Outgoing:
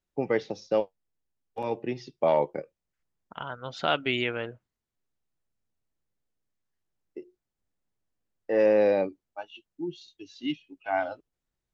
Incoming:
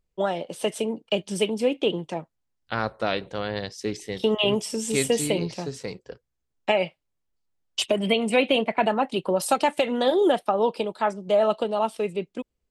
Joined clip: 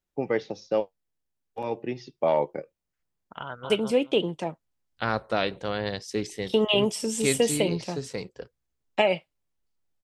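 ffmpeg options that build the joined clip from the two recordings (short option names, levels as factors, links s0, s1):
-filter_complex "[0:a]apad=whole_dur=10.03,atrim=end=10.03,atrim=end=3.702[s0];[1:a]atrim=start=1.398:end=7.73[s1];[s0][s1]acrossfade=d=0.004:c1=hsin:c2=hsin,asplit=2[s2][s3];[s3]afade=t=in:st=3.42:d=0.01,afade=t=out:st=3.7:d=0.01,aecho=0:1:210|420|630:0.707946|0.106192|0.0159288[s4];[s2][s4]amix=inputs=2:normalize=0"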